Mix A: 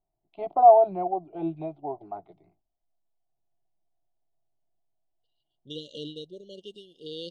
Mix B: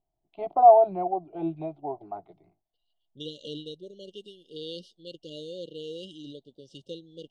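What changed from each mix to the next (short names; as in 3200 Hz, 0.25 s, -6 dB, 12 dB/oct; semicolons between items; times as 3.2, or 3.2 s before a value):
second voice: entry -2.50 s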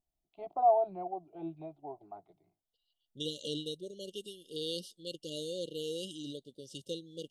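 first voice -10.5 dB; master: remove LPF 4000 Hz 12 dB/oct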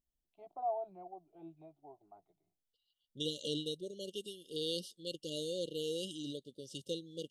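first voice -11.0 dB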